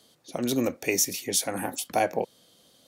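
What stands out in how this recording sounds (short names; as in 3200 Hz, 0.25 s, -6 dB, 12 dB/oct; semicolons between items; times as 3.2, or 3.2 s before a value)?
noise floor -61 dBFS; spectral tilt -3.0 dB/oct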